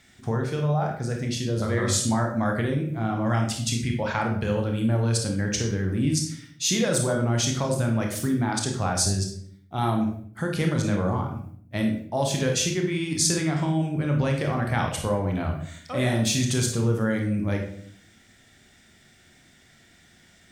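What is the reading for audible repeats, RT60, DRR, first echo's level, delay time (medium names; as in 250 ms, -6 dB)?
no echo, 0.60 s, 1.5 dB, no echo, no echo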